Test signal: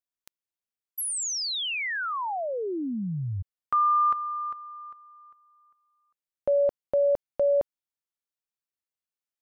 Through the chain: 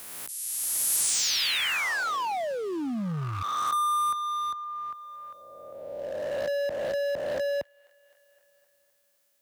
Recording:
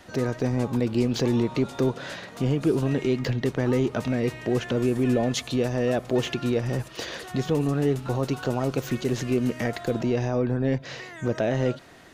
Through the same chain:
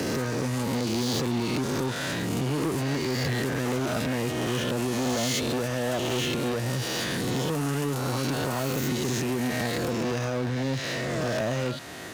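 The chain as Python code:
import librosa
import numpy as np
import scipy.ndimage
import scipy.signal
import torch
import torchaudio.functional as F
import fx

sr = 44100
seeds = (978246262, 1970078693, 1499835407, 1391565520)

p1 = fx.spec_swells(x, sr, rise_s=1.51)
p2 = 10.0 ** (-21.0 / 20.0) * np.tanh(p1 / 10.0 ** (-21.0 / 20.0))
p3 = p2 + fx.echo_wet_highpass(p2, sr, ms=258, feedback_pct=53, hz=1600.0, wet_db=-24, dry=0)
p4 = fx.dynamic_eq(p3, sr, hz=430.0, q=2.0, threshold_db=-39.0, ratio=4.0, max_db=-5)
p5 = scipy.signal.sosfilt(scipy.signal.butter(2, 68.0, 'highpass', fs=sr, output='sos'), p4)
p6 = 10.0 ** (-35.0 / 20.0) * (np.abs((p5 / 10.0 ** (-35.0 / 20.0) + 3.0) % 4.0 - 2.0) - 1.0)
p7 = p5 + F.gain(torch.from_numpy(p6), -7.5).numpy()
p8 = fx.high_shelf(p7, sr, hz=6500.0, db=7.0)
y = fx.band_squash(p8, sr, depth_pct=40)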